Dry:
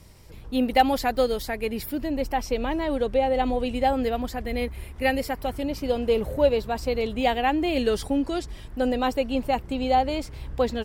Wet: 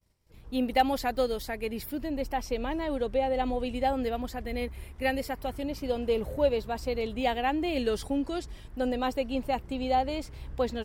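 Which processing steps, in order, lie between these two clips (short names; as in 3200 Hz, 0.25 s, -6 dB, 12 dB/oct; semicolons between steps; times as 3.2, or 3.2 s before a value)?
expander -38 dBFS; gain -5 dB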